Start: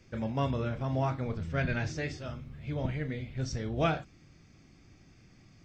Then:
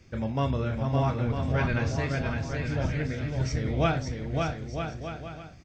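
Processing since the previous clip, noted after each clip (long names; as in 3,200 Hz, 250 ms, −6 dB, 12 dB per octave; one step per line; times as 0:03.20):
parametric band 71 Hz +6 dB 0.8 octaves
on a send: bouncing-ball delay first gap 560 ms, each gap 0.7×, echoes 5
on the sum: level +2.5 dB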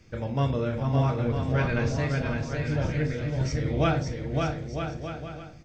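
on a send at −10 dB: parametric band 480 Hz +12 dB 0.47 octaves + convolution reverb RT60 0.40 s, pre-delay 7 ms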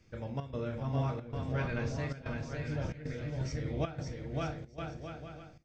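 gate pattern "xxx.xxxxx.xxx" 113 BPM −12 dB
level −8.5 dB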